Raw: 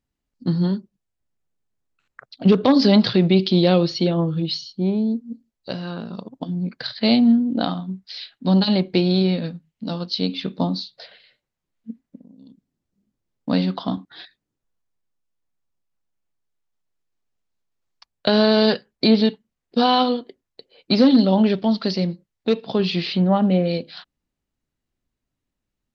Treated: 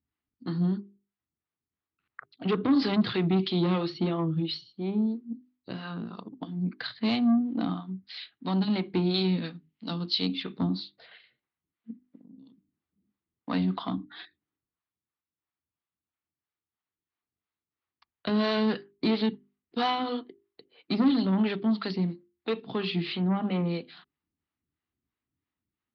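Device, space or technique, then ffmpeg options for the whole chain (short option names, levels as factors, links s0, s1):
guitar amplifier with harmonic tremolo: -filter_complex "[0:a]acrossover=split=440[s0][s1];[s0]aeval=exprs='val(0)*(1-0.7/2+0.7/2*cos(2*PI*3*n/s))':c=same[s2];[s1]aeval=exprs='val(0)*(1-0.7/2-0.7/2*cos(2*PI*3*n/s))':c=same[s3];[s2][s3]amix=inputs=2:normalize=0,asoftclip=type=tanh:threshold=0.15,highpass=78,equalizer=f=81:t=q:w=4:g=7,equalizer=f=310:t=q:w=4:g=5,equalizer=f=560:t=q:w=4:g=-9,equalizer=f=1200:t=q:w=4:g=5,equalizer=f=2000:t=q:w=4:g=3,lowpass=f=3900:w=0.5412,lowpass=f=3900:w=1.3066,bandreject=f=50:t=h:w=6,bandreject=f=100:t=h:w=6,bandreject=f=150:t=h:w=6,bandreject=f=200:t=h:w=6,bandreject=f=250:t=h:w=6,bandreject=f=300:t=h:w=6,bandreject=f=350:t=h:w=6,bandreject=f=400:t=h:w=6,asettb=1/sr,asplit=3[s4][s5][s6];[s4]atrim=end=9.144[s7];[s5]atrim=start=9.14:end=10.43,asetpts=PTS-STARTPTS,afade=t=in:d=0.004:c=qsin,afade=t=out:st=1.286:d=0.004:c=qsin,highshelf=f=3200:g=11[s8];[s6]atrim=start=10.426[s9];[s7][s8]acrossfade=d=0.004:c1=hsin:c2=qsin[s10];[s10][s9]acrossfade=d=0.004:c1=qsin:c2=hsin,volume=0.75"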